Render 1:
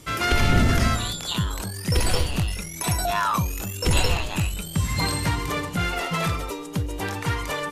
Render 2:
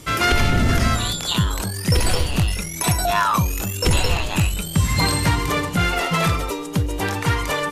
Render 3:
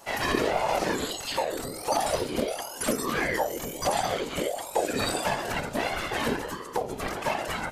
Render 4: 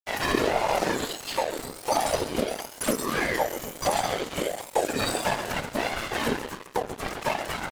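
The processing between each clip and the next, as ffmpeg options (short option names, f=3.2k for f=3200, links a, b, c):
-af "alimiter=limit=-12.5dB:level=0:latency=1:release=302,volume=5.5dB"
-af "bandreject=f=3k:w=8.2,afftfilt=real='hypot(re,im)*cos(2*PI*random(0))':imag='hypot(re,im)*sin(2*PI*random(1))':win_size=512:overlap=0.75,aeval=exprs='val(0)*sin(2*PI*550*n/s+550*0.4/1.5*sin(2*PI*1.5*n/s))':c=same"
-filter_complex "[0:a]asplit=2[a][b];[b]aeval=exprs='sgn(val(0))*max(abs(val(0))-0.0106,0)':c=same,volume=-8dB[c];[a][c]amix=inputs=2:normalize=0,aecho=1:1:133|266|399|532|665|798:0.211|0.116|0.0639|0.0352|0.0193|0.0106,aeval=exprs='sgn(val(0))*max(abs(val(0))-0.0168,0)':c=same"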